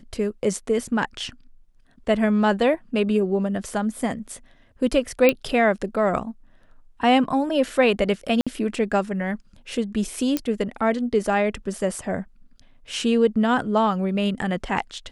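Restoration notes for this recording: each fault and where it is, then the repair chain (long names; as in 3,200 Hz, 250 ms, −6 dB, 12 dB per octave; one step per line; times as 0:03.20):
0:05.29: click −5 dBFS
0:08.41–0:08.47: drop-out 56 ms
0:10.37: click −9 dBFS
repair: click removal
repair the gap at 0:08.41, 56 ms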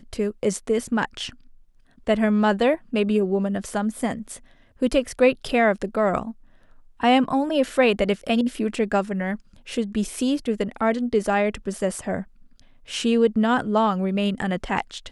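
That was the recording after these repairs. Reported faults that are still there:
none of them is left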